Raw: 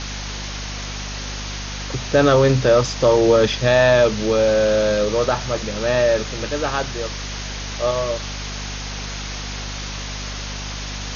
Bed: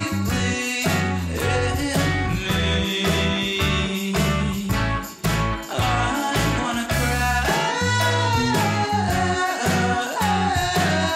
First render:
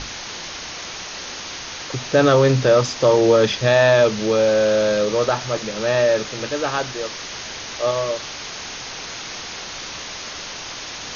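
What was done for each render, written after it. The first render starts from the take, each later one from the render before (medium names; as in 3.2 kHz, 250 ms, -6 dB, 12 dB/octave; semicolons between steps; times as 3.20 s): hum notches 50/100/150/200/250 Hz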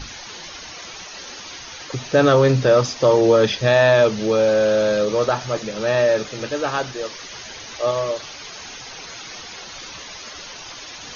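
noise reduction 10 dB, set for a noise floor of -33 dBFS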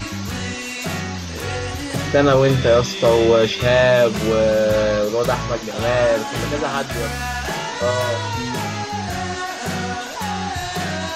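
add bed -4.5 dB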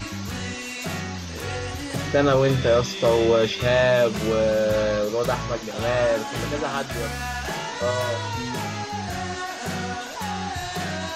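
trim -4.5 dB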